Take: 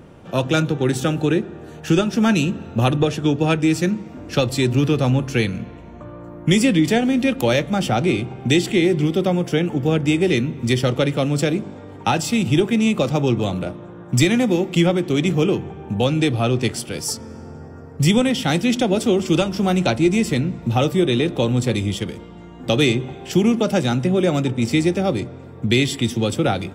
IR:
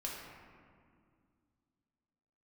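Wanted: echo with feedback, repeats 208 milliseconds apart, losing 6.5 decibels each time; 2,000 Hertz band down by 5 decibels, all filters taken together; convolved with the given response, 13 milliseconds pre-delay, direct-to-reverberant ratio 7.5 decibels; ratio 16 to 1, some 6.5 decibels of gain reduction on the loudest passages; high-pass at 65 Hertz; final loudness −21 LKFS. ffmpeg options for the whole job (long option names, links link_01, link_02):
-filter_complex "[0:a]highpass=65,equalizer=frequency=2000:width_type=o:gain=-6.5,acompressor=threshold=-18dB:ratio=16,aecho=1:1:208|416|624|832|1040|1248:0.473|0.222|0.105|0.0491|0.0231|0.0109,asplit=2[link_01][link_02];[1:a]atrim=start_sample=2205,adelay=13[link_03];[link_02][link_03]afir=irnorm=-1:irlink=0,volume=-8.5dB[link_04];[link_01][link_04]amix=inputs=2:normalize=0,volume=1.5dB"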